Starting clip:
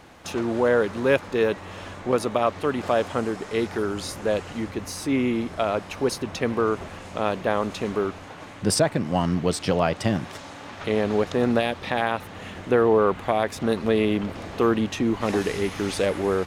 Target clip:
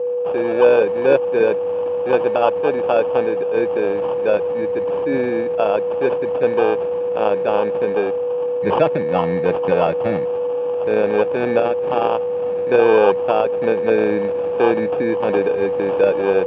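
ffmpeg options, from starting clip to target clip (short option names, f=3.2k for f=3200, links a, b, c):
-af "acrusher=samples=22:mix=1:aa=0.000001,aeval=exprs='val(0)+0.0447*sin(2*PI*490*n/s)':c=same,highpass=180,equalizer=f=240:t=q:w=4:g=-6,equalizer=f=510:t=q:w=4:g=6,equalizer=f=860:t=q:w=4:g=5,equalizer=f=1.4k:t=q:w=4:g=-7,lowpass=f=2.5k:w=0.5412,lowpass=f=2.5k:w=1.3066,volume=3.5dB"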